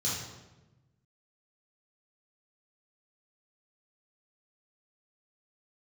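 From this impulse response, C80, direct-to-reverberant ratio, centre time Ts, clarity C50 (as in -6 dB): 4.0 dB, -8.5 dB, 68 ms, 0.5 dB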